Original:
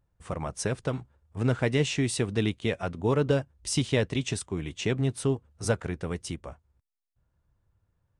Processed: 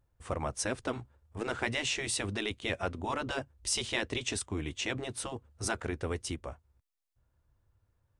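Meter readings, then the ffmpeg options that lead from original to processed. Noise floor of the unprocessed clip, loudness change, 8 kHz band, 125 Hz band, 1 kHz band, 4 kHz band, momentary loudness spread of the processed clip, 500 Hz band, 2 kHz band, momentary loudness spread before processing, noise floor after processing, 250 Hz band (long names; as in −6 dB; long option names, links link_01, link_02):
−78 dBFS, −5.5 dB, 0.0 dB, −12.0 dB, 0.0 dB, 0.0 dB, 8 LU, −8.0 dB, 0.0 dB, 10 LU, −78 dBFS, −9.0 dB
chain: -af "afftfilt=real='re*lt(hypot(re,im),0.251)':imag='im*lt(hypot(re,im),0.251)':win_size=1024:overlap=0.75,equalizer=frequency=170:width=5.3:gain=-12"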